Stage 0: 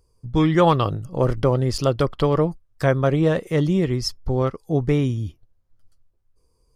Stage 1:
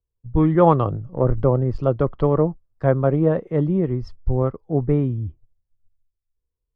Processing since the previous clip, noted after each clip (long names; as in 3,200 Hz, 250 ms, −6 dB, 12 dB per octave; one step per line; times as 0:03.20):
low-pass filter 1,100 Hz 12 dB per octave
in parallel at −2 dB: downward compressor, threshold −27 dBFS, peak gain reduction 14.5 dB
on the sum: multiband upward and downward expander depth 70%
level −1 dB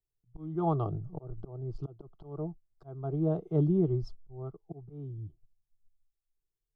thirty-one-band graphic EQ 630 Hz +5 dB, 1,000 Hz −10 dB, 2,500 Hz −11 dB
volume swells 681 ms
phaser with its sweep stopped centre 360 Hz, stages 8
level −4.5 dB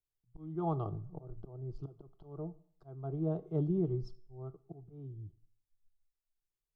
dense smooth reverb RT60 0.59 s, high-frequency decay 0.9×, DRR 15.5 dB
level −5.5 dB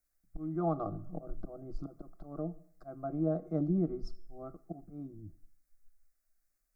in parallel at +3 dB: downward compressor, threshold −42 dBFS, peak gain reduction 14 dB
on the sum: phaser with its sweep stopped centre 620 Hz, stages 8
level +4 dB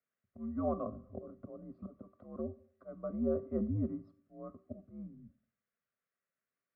single-sideband voice off tune −84 Hz 200–3,000 Hz
notch filter 990 Hz, Q 8.8
tuned comb filter 390 Hz, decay 0.38 s, harmonics odd, mix 70%
level +9 dB